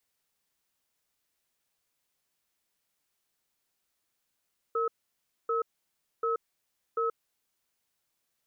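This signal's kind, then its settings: cadence 459 Hz, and 1.29 kHz, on 0.13 s, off 0.61 s, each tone -28.5 dBFS 2.83 s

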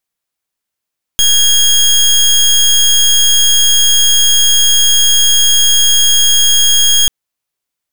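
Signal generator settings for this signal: pulse 3.27 kHz, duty 24% -8.5 dBFS 5.89 s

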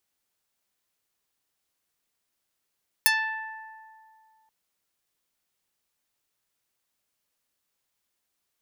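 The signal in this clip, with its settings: plucked string A5, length 1.43 s, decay 2.47 s, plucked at 0.21, medium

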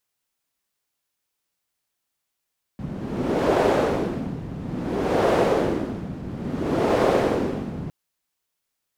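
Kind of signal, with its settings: wind-like swept noise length 5.11 s, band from 170 Hz, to 510 Hz, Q 1.5, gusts 3, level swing 13 dB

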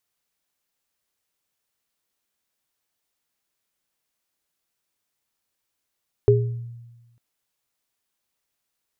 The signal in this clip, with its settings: sine partials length 0.90 s, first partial 118 Hz, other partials 410 Hz, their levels 5 dB, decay 1.24 s, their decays 0.38 s, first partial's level -14.5 dB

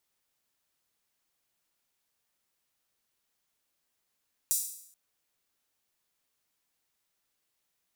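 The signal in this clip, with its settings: open hi-hat length 0.43 s, high-pass 7.4 kHz, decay 0.68 s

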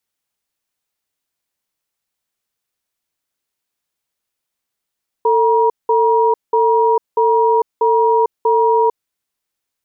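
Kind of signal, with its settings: cadence 448 Hz, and 952 Hz, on 0.45 s, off 0.19 s, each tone -13 dBFS 3.69 s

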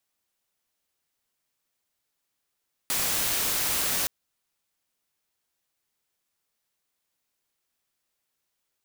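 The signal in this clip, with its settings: noise white, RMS -26.5 dBFS 1.17 s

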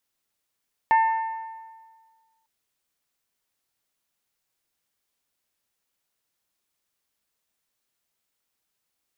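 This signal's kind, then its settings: metal hit bell, lowest mode 896 Hz, modes 4, decay 1.61 s, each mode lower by 10 dB, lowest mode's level -14 dB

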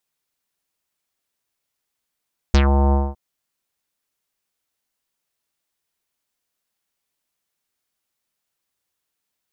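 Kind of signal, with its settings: synth note square C#2 24 dB/octave, low-pass 900 Hz, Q 2.7, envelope 3 oct, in 0.14 s, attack 1 ms, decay 0.08 s, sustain -5 dB, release 0.22 s, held 0.39 s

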